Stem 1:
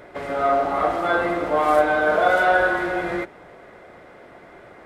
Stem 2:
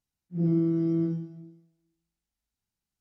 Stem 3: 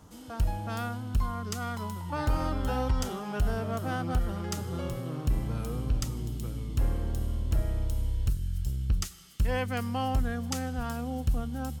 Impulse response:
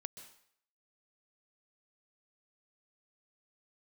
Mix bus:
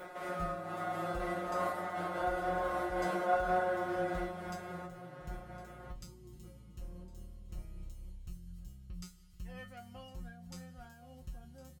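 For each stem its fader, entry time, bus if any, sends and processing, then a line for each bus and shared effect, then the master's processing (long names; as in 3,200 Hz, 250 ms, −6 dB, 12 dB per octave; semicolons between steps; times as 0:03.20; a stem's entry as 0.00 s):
−2.5 dB, 0.00 s, bus A, no send, echo send −4.5 dB, compressor on every frequency bin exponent 0.6
−3.5 dB, 0.00 s, bus A, no send, no echo send, no processing
−4.0 dB, 0.00 s, no bus, no send, echo send −16 dB, low-shelf EQ 200 Hz +6.5 dB
bus A: 0.0 dB, high-shelf EQ 6,400 Hz +10.5 dB; downward compressor, threshold −21 dBFS, peak gain reduction 8.5 dB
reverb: not used
echo: single-tap delay 1,059 ms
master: tuned comb filter 180 Hz, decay 0.21 s, harmonics all, mix 100%; amplitude modulation by smooth noise, depth 55%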